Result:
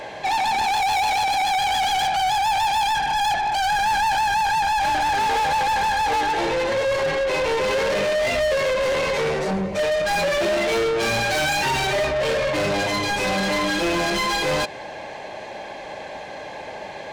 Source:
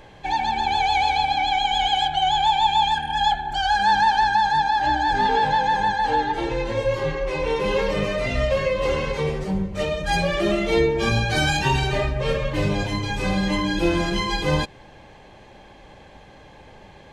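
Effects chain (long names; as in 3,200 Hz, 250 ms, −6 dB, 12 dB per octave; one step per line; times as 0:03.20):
thirty-one-band graphic EQ 630 Hz +7 dB, 1,250 Hz −6 dB, 3,150 Hz −5 dB
mid-hump overdrive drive 30 dB, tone 6,300 Hz, clips at −6.5 dBFS
level −8.5 dB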